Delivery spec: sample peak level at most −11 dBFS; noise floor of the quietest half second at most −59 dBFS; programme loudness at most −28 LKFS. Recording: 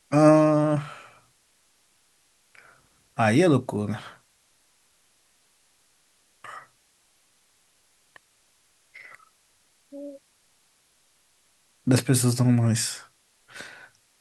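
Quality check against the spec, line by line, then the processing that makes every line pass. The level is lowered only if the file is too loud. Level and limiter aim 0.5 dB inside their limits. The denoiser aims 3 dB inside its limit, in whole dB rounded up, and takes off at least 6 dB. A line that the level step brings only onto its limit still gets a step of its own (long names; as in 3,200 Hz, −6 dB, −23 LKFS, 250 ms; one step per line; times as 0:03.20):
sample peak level −4.5 dBFS: out of spec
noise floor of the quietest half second −65 dBFS: in spec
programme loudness −22.0 LKFS: out of spec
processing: level −6.5 dB
brickwall limiter −11.5 dBFS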